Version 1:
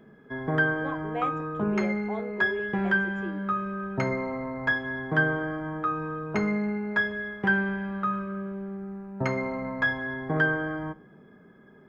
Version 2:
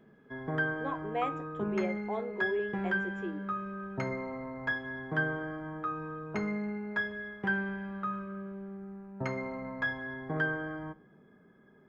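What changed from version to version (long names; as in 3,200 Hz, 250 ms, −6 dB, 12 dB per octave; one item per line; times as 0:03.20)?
background −7.0 dB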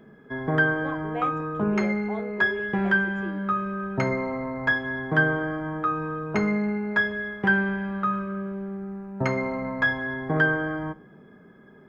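background +9.5 dB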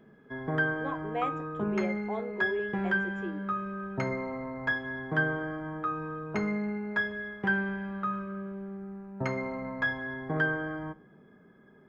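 background −6.5 dB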